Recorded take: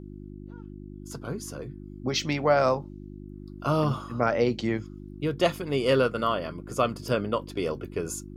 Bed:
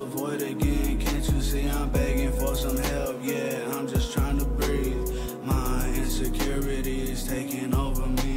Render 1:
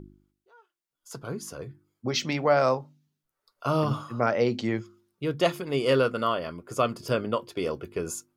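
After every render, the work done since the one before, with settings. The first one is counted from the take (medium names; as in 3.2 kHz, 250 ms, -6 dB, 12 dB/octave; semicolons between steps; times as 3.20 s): de-hum 50 Hz, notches 7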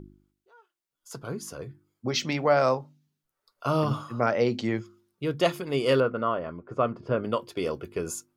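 6.00–7.24 s: low-pass 1.6 kHz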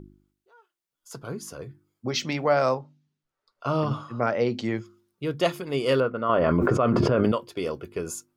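2.74–4.57 s: distance through air 73 m; 6.29–7.32 s: level flattener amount 100%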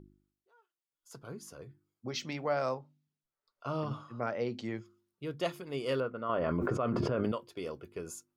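trim -10 dB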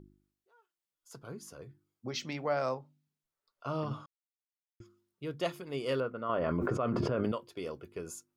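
4.06–4.80 s: mute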